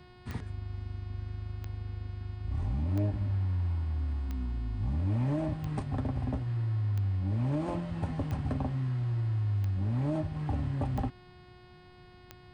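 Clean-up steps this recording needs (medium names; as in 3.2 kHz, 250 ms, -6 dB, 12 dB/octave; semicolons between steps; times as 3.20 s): de-click; de-hum 362.1 Hz, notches 14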